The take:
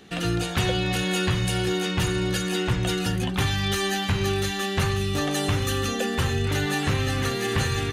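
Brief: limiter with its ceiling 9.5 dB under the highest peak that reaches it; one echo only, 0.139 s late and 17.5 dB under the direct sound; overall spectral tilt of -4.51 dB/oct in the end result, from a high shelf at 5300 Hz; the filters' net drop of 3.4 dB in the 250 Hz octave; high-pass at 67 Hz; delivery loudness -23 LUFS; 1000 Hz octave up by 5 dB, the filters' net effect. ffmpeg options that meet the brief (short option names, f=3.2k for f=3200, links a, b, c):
-af "highpass=67,equalizer=f=250:t=o:g=-6,equalizer=f=1k:t=o:g=7.5,highshelf=f=5.3k:g=-5.5,alimiter=limit=-20.5dB:level=0:latency=1,aecho=1:1:139:0.133,volume=6dB"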